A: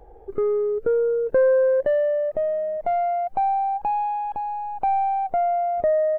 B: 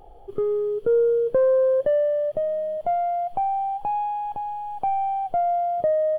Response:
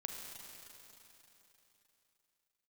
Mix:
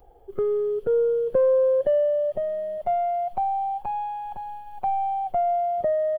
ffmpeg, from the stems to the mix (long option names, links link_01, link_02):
-filter_complex "[0:a]aemphasis=mode=production:type=75kf,acompressor=threshold=-26dB:ratio=6,volume=-9.5dB[link_01];[1:a]agate=range=-8dB:threshold=-32dB:ratio=16:detection=peak,adelay=4.6,volume=-1dB[link_02];[link_01][link_02]amix=inputs=2:normalize=0"